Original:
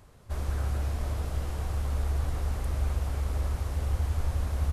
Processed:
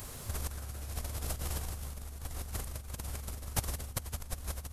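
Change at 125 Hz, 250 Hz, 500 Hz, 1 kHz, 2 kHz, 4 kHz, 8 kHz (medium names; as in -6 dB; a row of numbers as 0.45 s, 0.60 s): -11.0 dB, -6.5 dB, -7.0 dB, -5.5 dB, -3.5 dB, +1.5 dB, +7.0 dB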